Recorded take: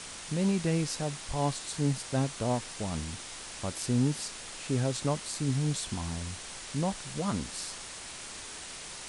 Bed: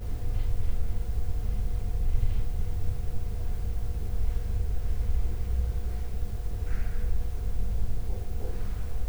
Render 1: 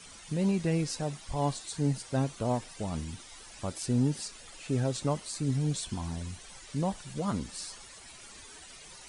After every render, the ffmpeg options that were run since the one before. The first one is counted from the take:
-af "afftdn=nr=12:nf=-43"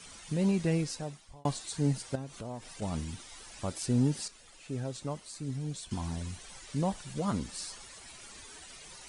-filter_complex "[0:a]asettb=1/sr,asplit=3[a][b][c];[a]atrim=end=2.154[d];[b]atrim=start=2.15:end=2.82,asetpts=PTS-STARTPTS,afade=t=in:d=0.004:c=qsin,afade=t=out:st=0.666:d=0.004:c=qsin,acompressor=threshold=-41dB:ratio=2.5:attack=3.2:release=140:knee=1:detection=peak[e];[c]atrim=start=2.816[f];[d][e]acrossfade=d=0.004:c1=hsin:c2=qsin[g];[g][f]acrossfade=d=0.004:c1=qsin:c2=hsin,asplit=4[h][i][j][k];[h]atrim=end=1.45,asetpts=PTS-STARTPTS,afade=t=out:st=0.71:d=0.74[l];[i]atrim=start=1.45:end=4.282,asetpts=PTS-STARTPTS,afade=t=in:d=0.004:c=hsin[m];[j]atrim=start=4.278:end=5.912,asetpts=PTS-STARTPTS,volume=-7dB[n];[k]atrim=start=5.908[o];[l][m]concat=n=2:v=0:a=1[p];[p][n]acrossfade=d=0.004:c1=hsin:c2=hsin[q];[q][o]acrossfade=d=0.004:c1=hsin:c2=hsin"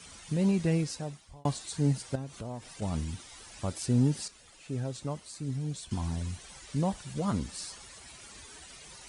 -af "highpass=54,lowshelf=f=84:g=10"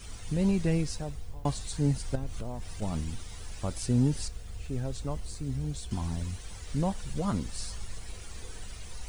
-filter_complex "[1:a]volume=-12dB[a];[0:a][a]amix=inputs=2:normalize=0"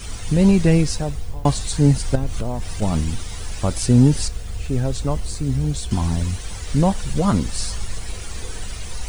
-af "volume=12dB"

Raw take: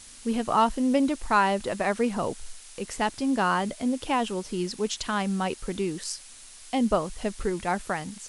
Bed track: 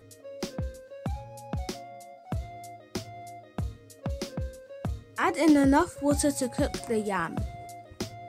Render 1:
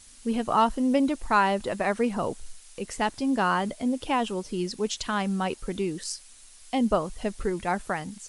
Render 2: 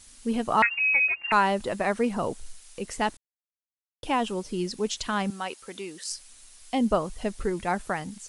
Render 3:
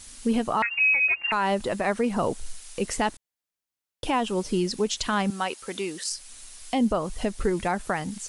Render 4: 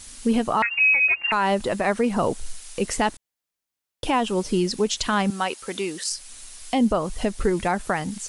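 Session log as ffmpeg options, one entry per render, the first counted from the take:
-af "afftdn=nr=6:nf=-47"
-filter_complex "[0:a]asettb=1/sr,asplit=3[a][b][c];[a]atrim=end=0.624[d];[b]atrim=start=0.62:end=1.32,asetpts=PTS-STARTPTS,afade=t=in:d=0.004:c=qsin,afade=t=out:st=0.696:d=0.004:c=qsin,lowpass=f=2.4k:t=q:w=0.5098,lowpass=f=2.4k:t=q:w=0.6013,lowpass=f=2.4k:t=q:w=0.9,lowpass=f=2.4k:t=q:w=2.563,afreqshift=-2800[e];[c]atrim=start=1.316[f];[d][e]acrossfade=d=0.004:c1=hsin:c2=qsin[g];[g][f]acrossfade=d=0.004:c1=qsin:c2=hsin,asettb=1/sr,asplit=3[h][i][j];[h]atrim=end=5.304[k];[i]atrim=start=5.3:end=6.11,asetpts=PTS-STARTPTS,afade=t=in:d=0.004:c=qsin,afade=t=out:st=0.806:d=0.004:c=qsin,highpass=f=910:p=1[l];[j]atrim=start=6.106[m];[k][l]acrossfade=d=0.004:c1=hsin:c2=qsin[n];[n][m]acrossfade=d=0.004:c1=qsin:c2=hsin,asplit=3[o][p][q];[o]atrim=end=3.17,asetpts=PTS-STARTPTS,afade=t=out:st=3.166:d=0.004:c=hsin[r];[p]atrim=start=3.17:end=4.03,asetpts=PTS-STARTPTS,volume=0[s];[q]atrim=start=4.03,asetpts=PTS-STARTPTS,afade=t=in:d=0.004:c=hsin[t];[r][s][t]concat=n=3:v=0:a=1"
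-af "alimiter=limit=-21.5dB:level=0:latency=1:release=259,acontrast=63"
-af "volume=3dB"

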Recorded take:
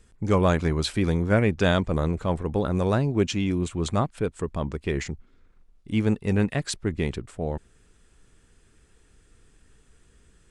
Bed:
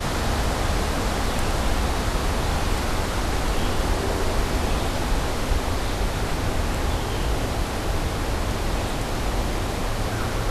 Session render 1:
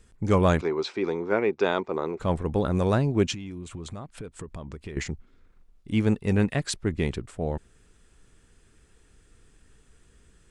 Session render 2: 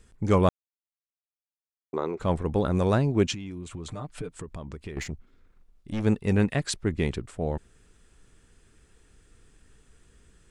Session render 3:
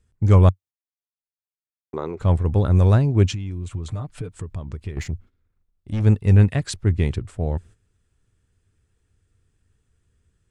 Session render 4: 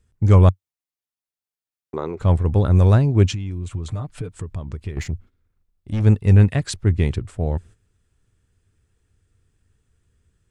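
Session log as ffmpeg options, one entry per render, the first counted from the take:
-filter_complex "[0:a]asettb=1/sr,asplit=3[a][b][c];[a]atrim=end=0.614[d];[b]atrim=start=0.61:end=2.2,asetpts=PTS-STARTPTS,afade=t=in:d=0.004:c=qsin,afade=t=out:st=1.586:d=0.004:c=qsin,highpass=380,equalizer=f=390:t=q:w=4:g=8,equalizer=f=600:t=q:w=4:g=-5,equalizer=f=900:t=q:w=4:g=4,equalizer=f=1.7k:t=q:w=4:g=-6,equalizer=f=3.1k:t=q:w=4:g=-9,equalizer=f=4.4k:t=q:w=4:g=-5,lowpass=f=5.1k:w=0.5412,lowpass=f=5.1k:w=1.3066[e];[c]atrim=start=2.196[f];[d][e]acrossfade=d=0.004:c1=hsin:c2=qsin[g];[g][f]acrossfade=d=0.004:c1=qsin:c2=hsin,asettb=1/sr,asplit=3[h][i][j];[h]atrim=end=3.344[k];[i]atrim=start=3.34:end=4.97,asetpts=PTS-STARTPTS,afade=t=in:d=0.004:c=qsin,afade=t=out:st=1.626:d=0.004:c=qsin,acompressor=threshold=-33dB:ratio=12:attack=3.2:release=140:knee=1:detection=peak[l];[j]atrim=start=4.966[m];[k][l]acrossfade=d=0.004:c1=hsin:c2=qsin[n];[n][m]acrossfade=d=0.004:c1=qsin:c2=hsin"
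-filter_complex "[0:a]asettb=1/sr,asplit=3[a][b][c];[a]atrim=end=3.884[d];[b]atrim=start=3.88:end=4.33,asetpts=PTS-STARTPTS,afade=t=in:d=0.004:c=qsin,afade=t=out:st=0.446:d=0.004:c=qsin,aecho=1:1:6.7:0.84,atrim=end_sample=19845[e];[c]atrim=start=4.326[f];[d][e]acrossfade=d=0.004:c1=hsin:c2=qsin[g];[g][f]acrossfade=d=0.004:c1=qsin:c2=hsin,asplit=3[h][i][j];[h]afade=t=out:st=4.93:d=0.02[k];[i]aeval=exprs='(tanh(20*val(0)+0.4)-tanh(0.4))/20':c=same,afade=t=in:st=4.93:d=0.02,afade=t=out:st=6.03:d=0.02[l];[j]afade=t=in:st=6.03:d=0.02[m];[k][l][m]amix=inputs=3:normalize=0,asplit=3[n][o][p];[n]atrim=end=0.49,asetpts=PTS-STARTPTS,afade=t=out:st=0.486:d=0.004:c=hsin[q];[o]atrim=start=0.49:end=1.93,asetpts=PTS-STARTPTS,volume=0[r];[p]atrim=start=1.93,asetpts=PTS-STARTPTS,afade=t=in:d=0.004:c=hsin[s];[q][r][s]concat=n=3:v=0:a=1"
-af "agate=range=-13dB:threshold=-48dB:ratio=16:detection=peak,equalizer=f=94:w=1.5:g=14.5"
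-af "volume=1.5dB,alimiter=limit=-2dB:level=0:latency=1"

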